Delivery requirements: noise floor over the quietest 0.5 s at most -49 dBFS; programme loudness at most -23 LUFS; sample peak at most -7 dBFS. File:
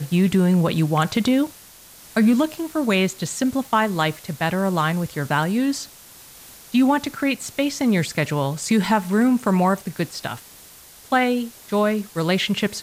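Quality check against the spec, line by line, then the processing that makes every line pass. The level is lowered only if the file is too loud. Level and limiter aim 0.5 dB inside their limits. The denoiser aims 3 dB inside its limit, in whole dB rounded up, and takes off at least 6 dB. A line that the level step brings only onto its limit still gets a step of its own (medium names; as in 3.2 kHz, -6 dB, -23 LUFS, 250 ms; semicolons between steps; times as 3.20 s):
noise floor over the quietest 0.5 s -46 dBFS: fail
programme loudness -21.0 LUFS: fail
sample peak -7.5 dBFS: pass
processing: noise reduction 6 dB, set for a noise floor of -46 dBFS; trim -2.5 dB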